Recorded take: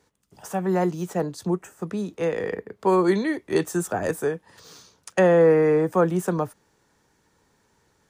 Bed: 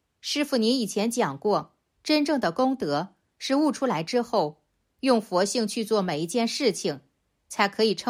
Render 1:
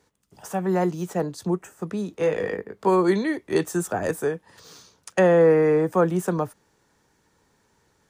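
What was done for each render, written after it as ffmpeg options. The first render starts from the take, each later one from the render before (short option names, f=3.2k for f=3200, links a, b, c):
-filter_complex "[0:a]asettb=1/sr,asplit=3[a][b][c];[a]atrim=end=2.154[d];[b]atrim=start=2.15:end=2.89,asetpts=PTS-STARTPTS,afade=t=in:d=0.004:c=qsin,afade=t=out:st=0.736:d=0.004:c=qsin,asplit=2[e][f];[f]adelay=20,volume=-5dB[g];[e][g]amix=inputs=2:normalize=0,atrim=end_sample=32634[h];[c]atrim=start=2.886[i];[d][h]acrossfade=d=0.004:c1=hsin:c2=qsin[j];[j][i]acrossfade=d=0.004:c1=qsin:c2=hsin"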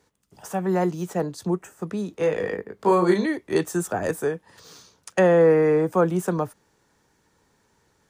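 -filter_complex "[0:a]asettb=1/sr,asplit=3[a][b][c];[a]atrim=end=2.764[d];[b]atrim=start=2.76:end=3.26,asetpts=PTS-STARTPTS,afade=t=in:d=0.004:c=qsin,afade=t=out:st=0.496:d=0.004:c=qsin,asplit=2[e][f];[f]adelay=34,volume=-4dB[g];[e][g]amix=inputs=2:normalize=0,atrim=end_sample=22050[h];[c]atrim=start=3.256[i];[d][h]acrossfade=d=0.004:c1=hsin:c2=qsin[j];[j][i]acrossfade=d=0.004:c1=qsin:c2=hsin,asettb=1/sr,asplit=3[k][l][m];[k]atrim=end=5.824[n];[l]atrim=start=5.82:end=6.23,asetpts=PTS-STARTPTS,afade=t=in:d=0.004:c=qsin,afade=t=out:st=0.406:d=0.004:c=qsin,bandreject=f=1.8k:w=12[o];[m]atrim=start=6.226[p];[n][o]acrossfade=d=0.004:c1=hsin:c2=qsin[q];[q][p]acrossfade=d=0.004:c1=qsin:c2=hsin"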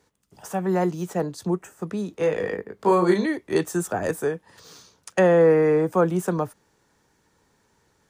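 -af anull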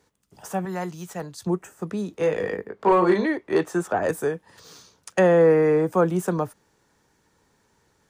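-filter_complex "[0:a]asettb=1/sr,asplit=3[a][b][c];[a]atrim=end=0.654[d];[b]atrim=start=0.65:end=1.47,asetpts=PTS-STARTPTS,afade=t=in:d=0.004:c=qsin,afade=t=out:st=0.816:d=0.004:c=qsin,equalizer=f=340:w=0.52:g=-10.5[e];[c]atrim=start=1.466[f];[d][e]acrossfade=d=0.004:c1=hsin:c2=qsin[g];[g][f]acrossfade=d=0.004:c1=qsin:c2=hsin,asettb=1/sr,asplit=3[h][i][j];[h]atrim=end=2.694[k];[i]atrim=start=2.69:end=4.09,asetpts=PTS-STARTPTS,afade=t=in:d=0.004:c=qsin,afade=t=out:st=1.396:d=0.004:c=qsin,asplit=2[l][m];[m]highpass=f=720:p=1,volume=13dB,asoftclip=type=tanh:threshold=-7.5dB[n];[l][n]amix=inputs=2:normalize=0,lowpass=f=1.2k:p=1,volume=-6dB[o];[j]atrim=start=4.086[p];[k][o]acrossfade=d=0.004:c1=hsin:c2=qsin[q];[q][p]acrossfade=d=0.004:c1=qsin:c2=hsin"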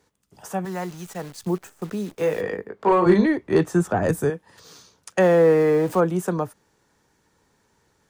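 -filter_complex "[0:a]asplit=3[a][b][c];[a]afade=t=out:st=0.64:d=0.02[d];[b]acrusher=bits=8:dc=4:mix=0:aa=0.000001,afade=t=in:st=0.64:d=0.02,afade=t=out:st=2.4:d=0.02[e];[c]afade=t=in:st=2.4:d=0.02[f];[d][e][f]amix=inputs=3:normalize=0,asettb=1/sr,asplit=3[g][h][i];[g]atrim=end=3.064[j];[h]atrim=start=3.06:end=4.3,asetpts=PTS-STARTPTS,afade=t=in:d=0.004:c=qsin,afade=t=out:st=1.236:d=0.004:c=qsin,bass=f=250:g=13,treble=f=4k:g=2[k];[i]atrim=start=4.296[l];[j][k]acrossfade=d=0.004:c1=hsin:c2=qsin[m];[m][l]acrossfade=d=0.004:c1=qsin:c2=hsin,asettb=1/sr,asplit=3[n][o][p];[n]atrim=end=5.204[q];[o]atrim=start=5.2:end=6,asetpts=PTS-STARTPTS,afade=t=in:d=0.004:c=qsin,afade=t=out:st=0.796:d=0.004:c=qsin,aeval=exprs='val(0)+0.5*0.02*sgn(val(0))':c=same[r];[p]atrim=start=5.996[s];[q][r]acrossfade=d=0.004:c1=hsin:c2=qsin[t];[t][s]acrossfade=d=0.004:c1=qsin:c2=hsin"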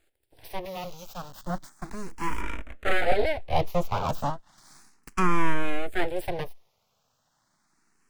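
-filter_complex "[0:a]aeval=exprs='abs(val(0))':c=same,asplit=2[a][b];[b]afreqshift=0.34[c];[a][c]amix=inputs=2:normalize=1"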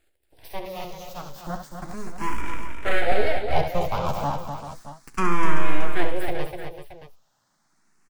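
-filter_complex "[0:a]asplit=2[a][b];[b]adelay=14,volume=-11dB[c];[a][c]amix=inputs=2:normalize=0,aecho=1:1:69|249|386|625:0.376|0.447|0.251|0.211"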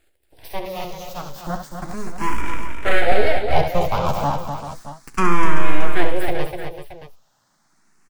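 -af "volume=5dB,alimiter=limit=-2dB:level=0:latency=1"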